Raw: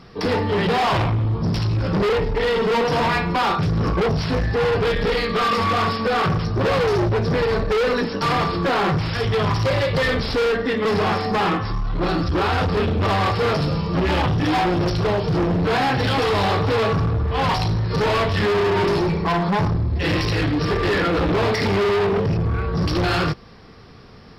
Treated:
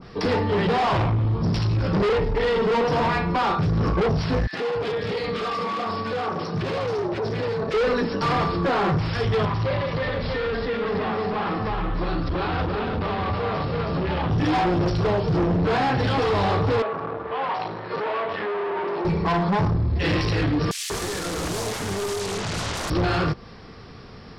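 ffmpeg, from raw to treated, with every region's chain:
-filter_complex "[0:a]asettb=1/sr,asplit=3[a][b][c];[a]atrim=end=4.474[d];[b]atrim=start=4.47:end=7.74,asetpts=PTS-STARTPTS,afade=t=in:d=0.004:c=qsin,afade=t=out:st=3.266:d=0.004:c=qsin,highpass=130,acrossover=split=200|1500[e][f][g];[f]adelay=60[h];[e]adelay=280[i];[i][h][g]amix=inputs=3:normalize=0,atrim=end_sample=144207[j];[c]atrim=start=7.736[k];[d][j]acrossfade=d=0.004:c1=hsin:c2=qsin[l];[l][k]acrossfade=d=0.004:c1=qsin:c2=hsin,asettb=1/sr,asplit=3[m][n][o];[m]atrim=end=9.454[p];[n]atrim=start=9.45:end=14.3,asetpts=PTS-STARTPTS,afade=t=in:d=0.004:c=qsin,afade=t=out:st=4.846:d=0.004:c=qsin,lowpass=f=4.6k:w=0.5412,lowpass=f=4.6k:w=1.3066,bandreject=f=50:t=h:w=6,bandreject=f=100:t=h:w=6,bandreject=f=150:t=h:w=6,bandreject=f=200:t=h:w=6,bandreject=f=250:t=h:w=6,bandreject=f=300:t=h:w=6,bandreject=f=350:t=h:w=6,bandreject=f=400:t=h:w=6,bandreject=f=450:t=h:w=6,aecho=1:1:322:0.708,atrim=end_sample=213885[q];[o]atrim=start=14.296[r];[p][q]acrossfade=d=0.004:c1=hsin:c2=qsin[s];[s][r]acrossfade=d=0.004:c1=qsin:c2=hsin,asettb=1/sr,asplit=3[t][u][v];[t]atrim=end=16.824[w];[u]atrim=start=16.82:end=19.05,asetpts=PTS-STARTPTS,afade=t=in:d=0.004:c=qsin,afade=t=out:st=2.226:d=0.004:c=qsin,highpass=450,lowpass=3.6k,aemphasis=mode=reproduction:type=75fm[x];[v]atrim=start=19.046[y];[w][x]acrossfade=d=0.004:c1=hsin:c2=qsin[z];[z][y]acrossfade=d=0.004:c1=qsin:c2=hsin,asettb=1/sr,asplit=3[aa][ab][ac];[aa]atrim=end=20.714[ad];[ab]atrim=start=20.71:end=22.9,asetpts=PTS-STARTPTS,afade=t=in:d=0.004:c=qsin,afade=t=out:st=2.186:d=0.004:c=qsin,aeval=exprs='0.141*sin(PI/2*10*val(0)/0.141)':c=same,acrossover=split=2400[ae][af];[ae]adelay=190[ag];[ag][af]amix=inputs=2:normalize=0,atrim=end_sample=96579[ah];[ac]atrim=start=22.896[ai];[ad][ah]acrossfade=d=0.004:c1=hsin:c2=qsin[aj];[aj][ai]acrossfade=d=0.004:c1=qsin:c2=hsin,lowpass=8.2k,alimiter=limit=-20.5dB:level=0:latency=1,adynamicequalizer=threshold=0.0178:dfrequency=1600:dqfactor=0.7:tfrequency=1600:tqfactor=0.7:attack=5:release=100:ratio=0.375:range=2.5:mode=cutabove:tftype=highshelf,volume=2dB"

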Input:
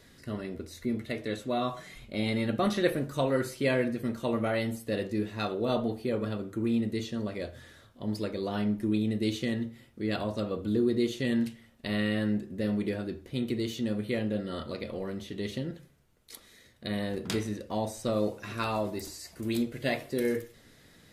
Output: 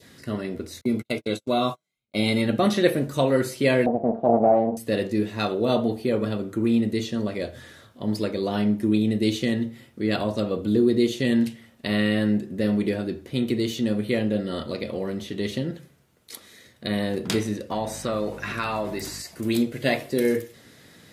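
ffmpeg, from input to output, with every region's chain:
-filter_complex "[0:a]asettb=1/sr,asplit=3[a][b][c];[a]atrim=end=0.814[d];[b]atrim=start=0.81:end=2.42,asetpts=PTS-STARTPTS,afade=t=in:d=0.004:c=qsin,afade=t=out:st=1.606:d=0.004:c=qsin,agate=range=-43dB:threshold=-38dB:ratio=16:release=100:detection=peak,asuperstop=centerf=1800:order=8:qfactor=5.2,highshelf=f=4k:g=5.5[e];[c]atrim=start=2.416[f];[d][e]acrossfade=d=0.004:c1=hsin:c2=qsin[g];[g][f]acrossfade=d=0.004:c1=qsin:c2=hsin,asettb=1/sr,asplit=3[h][i][j];[h]atrim=end=3.864[k];[i]atrim=start=3.86:end=4.77,asetpts=PTS-STARTPTS,afade=t=in:d=0.004:c=qsin,afade=t=out:st=0.906:d=0.004:c=qsin,lowshelf=f=140:t=q:w=3:g=-9,aeval=exprs='max(val(0),0)':c=same,lowpass=f=710:t=q:w=6.9[l];[j]atrim=start=4.766[m];[k][l]acrossfade=d=0.004:c1=hsin:c2=qsin[n];[n][m]acrossfade=d=0.004:c1=qsin:c2=hsin,asettb=1/sr,asplit=3[o][p][q];[o]atrim=end=17.724[r];[p]atrim=start=17.72:end=19.22,asetpts=PTS-STARTPTS,afade=t=in:d=0.004:c=qsin,afade=t=out:st=1.496:d=0.004:c=qsin,equalizer=f=1.6k:w=0.79:g=10,acompressor=threshold=-34dB:ratio=2:attack=3.2:release=140:knee=1:detection=peak,aeval=exprs='val(0)+0.00631*(sin(2*PI*50*n/s)+sin(2*PI*2*50*n/s)/2+sin(2*PI*3*50*n/s)/3+sin(2*PI*4*50*n/s)/4+sin(2*PI*5*50*n/s)/5)':c=same[s];[q]atrim=start=19.216[t];[r][s]acrossfade=d=0.004:c1=hsin:c2=qsin[u];[u][t]acrossfade=d=0.004:c1=qsin:c2=hsin,highpass=94,adynamicequalizer=threshold=0.00355:dfrequency=1300:dqfactor=1.6:tfrequency=1300:tqfactor=1.6:attack=5:release=100:ratio=0.375:range=2.5:mode=cutabove:tftype=bell,volume=7dB"

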